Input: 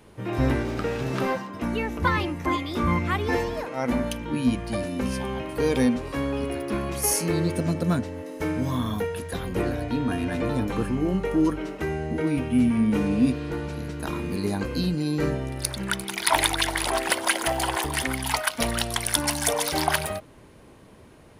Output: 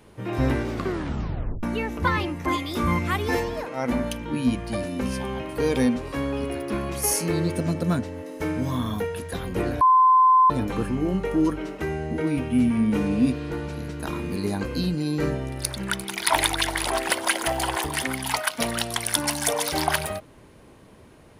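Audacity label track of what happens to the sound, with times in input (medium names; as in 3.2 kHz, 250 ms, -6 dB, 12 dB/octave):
0.700000	0.700000	tape stop 0.93 s
2.480000	3.400000	treble shelf 6 kHz +9.5 dB
9.810000	10.500000	bleep 1.03 kHz -12.5 dBFS
17.880000	19.690000	high-pass 98 Hz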